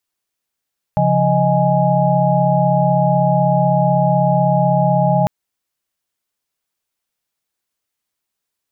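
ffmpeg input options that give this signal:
ffmpeg -f lavfi -i "aevalsrc='0.141*(sin(2*PI*138.59*t)+sin(2*PI*174.61*t)+sin(2*PI*622.25*t)+sin(2*PI*830.61*t))':duration=4.3:sample_rate=44100" out.wav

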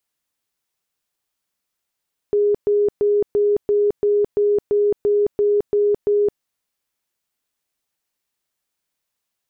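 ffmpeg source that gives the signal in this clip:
ffmpeg -f lavfi -i "aevalsrc='0.211*sin(2*PI*412*mod(t,0.34))*lt(mod(t,0.34),89/412)':duration=4.08:sample_rate=44100" out.wav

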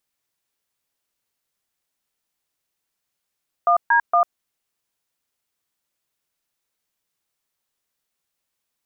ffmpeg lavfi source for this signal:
ffmpeg -f lavfi -i "aevalsrc='0.168*clip(min(mod(t,0.232),0.097-mod(t,0.232))/0.002,0,1)*(eq(floor(t/0.232),0)*(sin(2*PI*697*mod(t,0.232))+sin(2*PI*1209*mod(t,0.232)))+eq(floor(t/0.232),1)*(sin(2*PI*941*mod(t,0.232))+sin(2*PI*1633*mod(t,0.232)))+eq(floor(t/0.232),2)*(sin(2*PI*697*mod(t,0.232))+sin(2*PI*1209*mod(t,0.232))))':duration=0.696:sample_rate=44100" out.wav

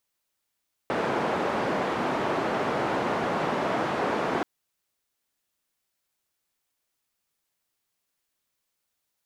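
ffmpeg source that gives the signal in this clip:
ffmpeg -f lavfi -i "anoisesrc=color=white:duration=3.53:sample_rate=44100:seed=1,highpass=frequency=180,lowpass=frequency=910,volume=-7.9dB" out.wav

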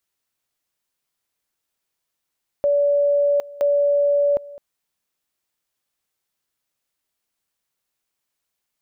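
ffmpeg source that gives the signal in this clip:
ffmpeg -f lavfi -i "aevalsrc='pow(10,(-14.5-20.5*gte(mod(t,0.97),0.76))/20)*sin(2*PI*574*t)':duration=1.94:sample_rate=44100" out.wav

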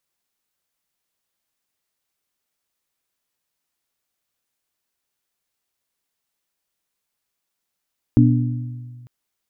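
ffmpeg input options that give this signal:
ffmpeg -f lavfi -i "aevalsrc='0.282*pow(10,-3*t/1.86)*sin(2*PI*122*t)+0.251*pow(10,-3*t/1.145)*sin(2*PI*244*t)+0.224*pow(10,-3*t/1.008)*sin(2*PI*292.8*t)':duration=0.9:sample_rate=44100" out.wav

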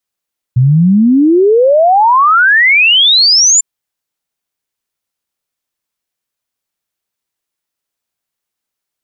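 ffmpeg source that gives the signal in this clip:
ffmpeg -f lavfi -i "aevalsrc='0.596*clip(min(t,3.05-t)/0.01,0,1)*sin(2*PI*120*3.05/log(7300/120)*(exp(log(7300/120)*t/3.05)-1))':duration=3.05:sample_rate=44100" out.wav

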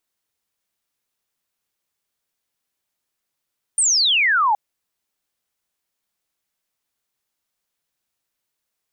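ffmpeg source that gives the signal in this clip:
ffmpeg -f lavfi -i "aevalsrc='0.2*clip(t/0.002,0,1)*clip((0.77-t)/0.002,0,1)*sin(2*PI*9300*0.77/log(800/9300)*(exp(log(800/9300)*t/0.77)-1))':duration=0.77:sample_rate=44100" out.wav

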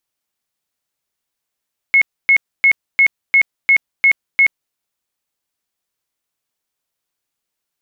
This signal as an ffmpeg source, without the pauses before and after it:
ffmpeg -f lavfi -i "aevalsrc='0.447*sin(2*PI*2180*mod(t,0.35))*lt(mod(t,0.35),165/2180)':duration=2.8:sample_rate=44100" out.wav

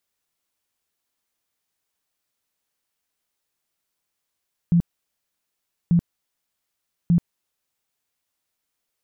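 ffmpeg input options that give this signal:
ffmpeg -f lavfi -i "aevalsrc='0.224*sin(2*PI*171*mod(t,1.19))*lt(mod(t,1.19),14/171)':duration=3.57:sample_rate=44100" out.wav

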